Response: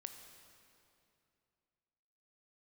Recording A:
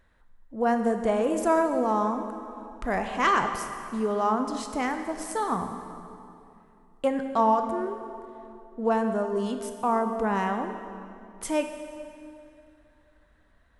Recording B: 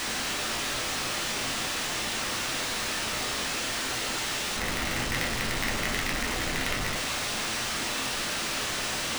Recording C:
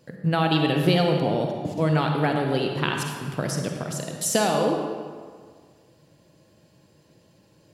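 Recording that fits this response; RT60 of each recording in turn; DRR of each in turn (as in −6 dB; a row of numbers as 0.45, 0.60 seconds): A; 2.7, 0.45, 1.8 seconds; 6.0, −0.5, 2.5 decibels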